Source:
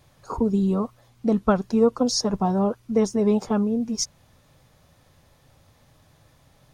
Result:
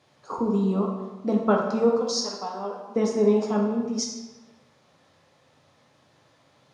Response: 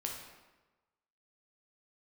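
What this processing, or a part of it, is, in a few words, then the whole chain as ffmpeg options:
supermarket ceiling speaker: -filter_complex "[0:a]asettb=1/sr,asplit=3[link_01][link_02][link_03];[link_01]atrim=end=1.894[link_04];[link_02]atrim=start=1.89:end=2.96,asetpts=PTS-STARTPTS,afade=type=in:duration=0.004:curve=qsin,afade=type=out:start_time=1.066:duration=0.004:curve=qsin,highpass=frequency=1400:poles=1[link_05];[link_03]atrim=start=2.956[link_06];[link_04][link_05]acrossfade=duration=0.004:curve1=hsin:curve2=qsin[link_07];[link_07][link_06]acrossfade=duration=0.004:curve1=qsin:curve2=hsin,highpass=210,lowpass=6200[link_08];[1:a]atrim=start_sample=2205[link_09];[link_08][link_09]afir=irnorm=-1:irlink=0"

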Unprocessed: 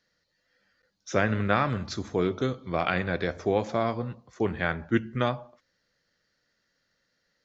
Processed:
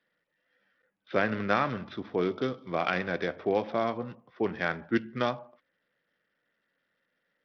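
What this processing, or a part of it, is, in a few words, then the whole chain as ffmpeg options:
Bluetooth headset: -af "highpass=180,aresample=8000,aresample=44100,volume=-1.5dB" -ar 44100 -c:a sbc -b:a 64k

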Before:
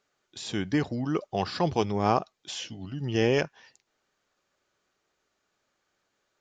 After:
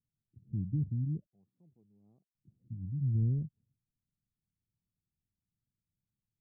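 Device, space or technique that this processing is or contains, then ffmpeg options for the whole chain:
the neighbour's flat through the wall: -filter_complex "[0:a]asettb=1/sr,asplit=3[link_01][link_02][link_03];[link_01]atrim=end=1.264[link_04];[link_02]atrim=start=1.26:end=2.35,asetpts=PTS-STARTPTS,afade=type=in:duration=0.004:curve=qsin,afade=type=out:start_time=1.086:duration=0.004:curve=qsin,highpass=1100[link_05];[link_03]atrim=start=2.346[link_06];[link_04][link_05]acrossfade=duration=0.004:curve1=hsin:curve2=qsin[link_07];[link_07][link_06]acrossfade=duration=0.004:curve1=qsin:curve2=hsin,lowpass=frequency=180:width=0.5412,lowpass=frequency=180:width=1.3066,equalizer=frequency=110:width_type=o:width=0.77:gain=4"

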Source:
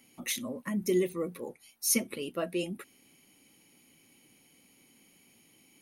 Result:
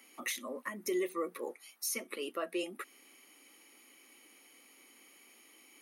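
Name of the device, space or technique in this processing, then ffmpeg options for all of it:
laptop speaker: -af "highpass=frequency=300:width=0.5412,highpass=frequency=300:width=1.3066,equalizer=frequency=1200:width_type=o:width=0.36:gain=9,equalizer=frequency=1900:width_type=o:width=0.46:gain=5,alimiter=level_in=3.5dB:limit=-24dB:level=0:latency=1:release=365,volume=-3.5dB,volume=2dB"

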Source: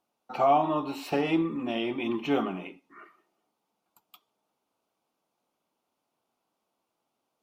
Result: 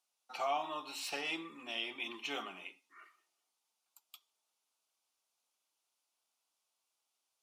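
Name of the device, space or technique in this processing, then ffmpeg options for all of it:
piezo pickup straight into a mixer: -af "lowpass=8700,aderivative,volume=6.5dB"

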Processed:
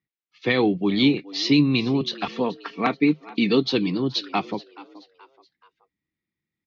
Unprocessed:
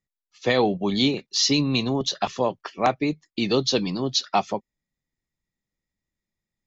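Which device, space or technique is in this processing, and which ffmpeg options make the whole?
frequency-shifting delay pedal into a guitar cabinet: -filter_complex "[0:a]asplit=4[link_01][link_02][link_03][link_04];[link_02]adelay=427,afreqshift=90,volume=-19.5dB[link_05];[link_03]adelay=854,afreqshift=180,volume=-27dB[link_06];[link_04]adelay=1281,afreqshift=270,volume=-34.6dB[link_07];[link_01][link_05][link_06][link_07]amix=inputs=4:normalize=0,highpass=84,equalizer=frequency=150:width_type=q:width=4:gain=4,equalizer=frequency=310:width_type=q:width=4:gain=8,equalizer=frequency=610:width_type=q:width=4:gain=-10,equalizer=frequency=870:width_type=q:width=4:gain=-4,equalizer=frequency=2200:width_type=q:width=4:gain=5,lowpass=frequency=4200:width=0.5412,lowpass=frequency=4200:width=1.3066,asettb=1/sr,asplit=3[link_08][link_09][link_10];[link_08]atrim=end=2.254[link_11];[link_09]atrim=start=2.25:end=3.67,asetpts=PTS-STARTPTS,afade=type=in:duration=0.004:curve=qsin,afade=type=out:start_time=1.416:duration=0.004:curve=qsin,aecho=1:1:4.4:0.55,atrim=end_sample=62622[link_12];[link_10]atrim=start=3.666[link_13];[link_11][link_12]acrossfade=duration=0.004:curve1=hsin:curve2=qsin[link_14];[link_14][link_13]acrossfade=duration=0.004:curve1=qsin:curve2=hsin"

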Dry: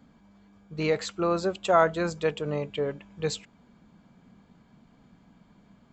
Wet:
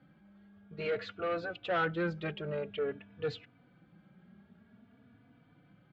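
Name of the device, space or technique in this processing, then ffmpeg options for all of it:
barber-pole flanger into a guitar amplifier: -filter_complex "[0:a]asplit=2[link_01][link_02];[link_02]adelay=3.4,afreqshift=0.51[link_03];[link_01][link_03]amix=inputs=2:normalize=1,asoftclip=type=tanh:threshold=-26dB,highpass=79,equalizer=frequency=110:width_type=q:width=4:gain=6,equalizer=frequency=1000:width_type=q:width=4:gain=-9,equalizer=frequency=1500:width_type=q:width=4:gain=6,lowpass=frequency=3500:width=0.5412,lowpass=frequency=3500:width=1.3066,volume=-1dB"

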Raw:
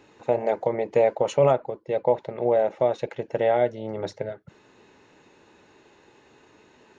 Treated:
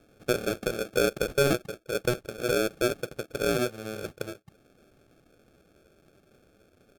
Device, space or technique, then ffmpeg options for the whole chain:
crushed at another speed: -af "asetrate=55125,aresample=44100,acrusher=samples=36:mix=1:aa=0.000001,asetrate=35280,aresample=44100,volume=-5dB"

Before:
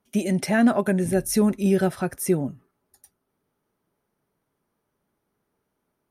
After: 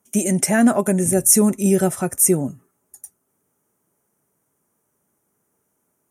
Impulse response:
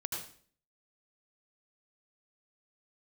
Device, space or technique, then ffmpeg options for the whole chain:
budget condenser microphone: -filter_complex "[0:a]highpass=76,highshelf=frequency=5600:width_type=q:width=3:gain=9,asettb=1/sr,asplit=3[link_01][link_02][link_03];[link_01]atrim=end=0.764[link_04];[link_02]atrim=start=0.76:end=2.34,asetpts=PTS-STARTPTS,afade=type=in:duration=0.004:curve=qsin,afade=type=out:start_time=1.576:duration=0.004:curve=qsin,bandreject=frequency=1600:width=9[link_05];[link_03]atrim=start=2.336[link_06];[link_04][link_05]acrossfade=duration=0.004:curve1=hsin:curve2=qsin[link_07];[link_07][link_06]acrossfade=duration=0.004:curve1=qsin:curve2=hsin,volume=3.5dB"

